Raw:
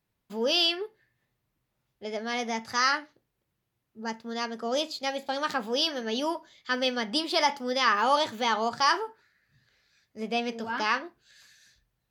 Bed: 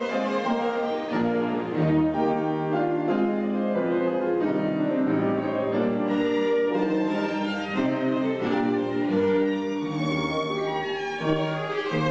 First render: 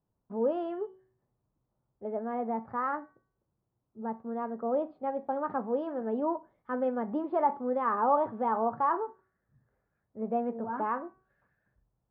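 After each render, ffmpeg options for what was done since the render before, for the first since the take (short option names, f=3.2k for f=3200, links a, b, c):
-af "lowpass=f=1.1k:w=0.5412,lowpass=f=1.1k:w=1.3066,bandreject=f=377.3:t=h:w=4,bandreject=f=754.6:t=h:w=4,bandreject=f=1.1319k:t=h:w=4,bandreject=f=1.5092k:t=h:w=4,bandreject=f=1.8865k:t=h:w=4,bandreject=f=2.2638k:t=h:w=4,bandreject=f=2.6411k:t=h:w=4,bandreject=f=3.0184k:t=h:w=4,bandreject=f=3.3957k:t=h:w=4,bandreject=f=3.773k:t=h:w=4,bandreject=f=4.1503k:t=h:w=4,bandreject=f=4.5276k:t=h:w=4,bandreject=f=4.9049k:t=h:w=4,bandreject=f=5.2822k:t=h:w=4,bandreject=f=5.6595k:t=h:w=4,bandreject=f=6.0368k:t=h:w=4,bandreject=f=6.4141k:t=h:w=4,bandreject=f=6.7914k:t=h:w=4,bandreject=f=7.1687k:t=h:w=4,bandreject=f=7.546k:t=h:w=4,bandreject=f=7.9233k:t=h:w=4,bandreject=f=8.3006k:t=h:w=4,bandreject=f=8.6779k:t=h:w=4,bandreject=f=9.0552k:t=h:w=4,bandreject=f=9.4325k:t=h:w=4,bandreject=f=9.8098k:t=h:w=4,bandreject=f=10.1871k:t=h:w=4,bandreject=f=10.5644k:t=h:w=4,bandreject=f=10.9417k:t=h:w=4,bandreject=f=11.319k:t=h:w=4"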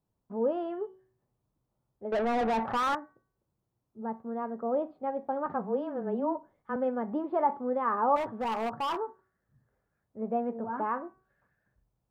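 -filter_complex "[0:a]asettb=1/sr,asplit=3[a][b][c];[a]atrim=end=2.124[d];[b]atrim=start=2.12:end=2.95,asetpts=PTS-STARTPTS,afade=t=in:d=0.004:c=qsin,afade=t=out:st=0.826:d=0.004:c=qsin,asplit=2[e][f];[f]highpass=f=720:p=1,volume=29dB,asoftclip=type=tanh:threshold=-21dB[g];[e][g]amix=inputs=2:normalize=0,lowpass=f=1.7k:p=1,volume=-6dB[h];[c]atrim=start=2.946[i];[d][h]acrossfade=d=0.004:c1=hsin:c2=qsin[j];[j][i]acrossfade=d=0.004:c1=qsin:c2=hsin,asettb=1/sr,asplit=3[k][l][m];[k]atrim=end=5.464[n];[l]atrim=start=5.46:end=6.76,asetpts=PTS-STARTPTS,afade=t=in:d=0.004:c=qsin,afade=t=out:st=1.296:d=0.004:c=qsin,afreqshift=-17[o];[m]atrim=start=6.756[p];[n][o]acrossfade=d=0.004:c1=hsin:c2=qsin[q];[q][p]acrossfade=d=0.004:c1=qsin:c2=hsin,asettb=1/sr,asplit=3[r][s][t];[r]atrim=end=8.164[u];[s]atrim=start=8.16:end=8.99,asetpts=PTS-STARTPTS,afade=t=in:d=0.004:c=qsin,afade=t=out:st=0.826:d=0.004:c=qsin,asoftclip=type=hard:threshold=-28dB[v];[t]atrim=start=8.986[w];[u][v]acrossfade=d=0.004:c1=hsin:c2=qsin[x];[x][w]acrossfade=d=0.004:c1=qsin:c2=hsin"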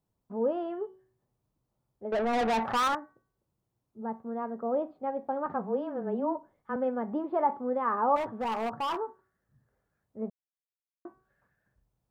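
-filter_complex "[0:a]asettb=1/sr,asplit=3[a][b][c];[a]atrim=end=2.334[d];[b]atrim=start=2.33:end=2.88,asetpts=PTS-STARTPTS,afade=t=in:d=0.004:c=qsin,afade=t=out:st=0.546:d=0.004:c=qsin,highshelf=f=2.2k:g=8.5[e];[c]atrim=start=2.876[f];[d][e]acrossfade=d=0.004:c1=hsin:c2=qsin[g];[g][f]acrossfade=d=0.004:c1=qsin:c2=hsin,asplit=3[h][i][j];[h]atrim=end=10.3,asetpts=PTS-STARTPTS,afade=t=out:st=10.296:d=0.004:c=hsin[k];[i]atrim=start=10.3:end=11.05,asetpts=PTS-STARTPTS,volume=0[l];[j]atrim=start=11.05,asetpts=PTS-STARTPTS,afade=t=in:d=0.004:c=hsin[m];[k][l][m]concat=n=3:v=0:a=1"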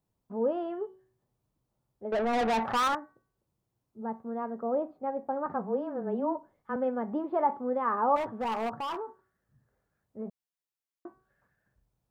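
-filter_complex "[0:a]asettb=1/sr,asplit=3[a][b][c];[a]atrim=end=4.654[d];[b]atrim=start=4.65:end=6.1,asetpts=PTS-STARTPTS,afade=t=in:d=0.004:c=qsin,afade=t=out:st=1.446:d=0.004:c=qsin,equalizer=f=3.4k:t=o:w=1:g=-6.5[e];[c]atrim=start=6.096[f];[d][e]acrossfade=d=0.004:c1=hsin:c2=qsin[g];[g][f]acrossfade=d=0.004:c1=qsin:c2=hsin,asplit=3[h][i][j];[h]afade=t=out:st=8.7:d=0.02[k];[i]acompressor=threshold=-32dB:ratio=6:attack=3.2:release=140:knee=1:detection=peak,afade=t=in:st=8.7:d=0.02,afade=t=out:st=10.25:d=0.02[l];[j]afade=t=in:st=10.25:d=0.02[m];[k][l][m]amix=inputs=3:normalize=0"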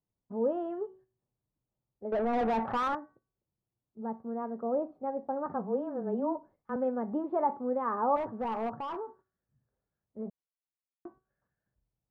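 -af "agate=range=-8dB:threshold=-55dB:ratio=16:detection=peak,lowpass=f=1k:p=1"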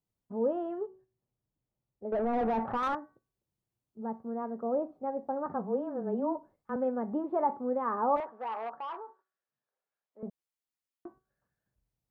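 -filter_complex "[0:a]asettb=1/sr,asplit=3[a][b][c];[a]atrim=end=0.864[d];[b]atrim=start=0.86:end=2.83,asetpts=PTS-STARTPTS,afade=t=in:d=0.004:c=qsin,afade=t=out:st=1.966:d=0.004:c=qsin,highshelf=f=2.6k:g=-11[e];[c]atrim=start=2.826[f];[d][e]acrossfade=d=0.004:c1=hsin:c2=qsin[g];[g][f]acrossfade=d=0.004:c1=qsin:c2=hsin,asettb=1/sr,asplit=3[h][i][j];[h]atrim=end=8.204[k];[i]atrim=start=8.2:end=10.23,asetpts=PTS-STARTPTS,afade=t=in:d=0.004:c=qsin,afade=t=out:st=2.026:d=0.004:c=qsin,highpass=650,lowpass=3.8k[l];[j]atrim=start=10.226[m];[k][l]acrossfade=d=0.004:c1=hsin:c2=qsin[n];[n][m]acrossfade=d=0.004:c1=qsin:c2=hsin"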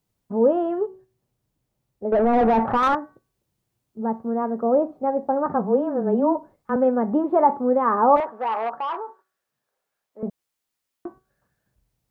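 -af "volume=11.5dB"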